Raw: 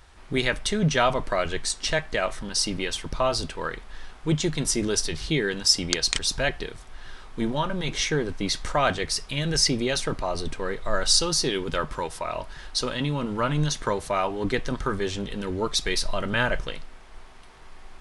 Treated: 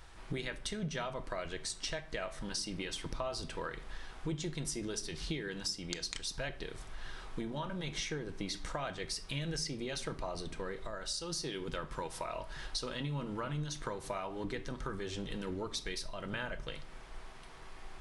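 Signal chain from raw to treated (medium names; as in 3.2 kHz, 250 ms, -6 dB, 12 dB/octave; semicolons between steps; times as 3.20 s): compression 10:1, threshold -33 dBFS, peak gain reduction 19 dB; on a send: reverberation RT60 0.60 s, pre-delay 6 ms, DRR 10.5 dB; on the sum: trim -2.5 dB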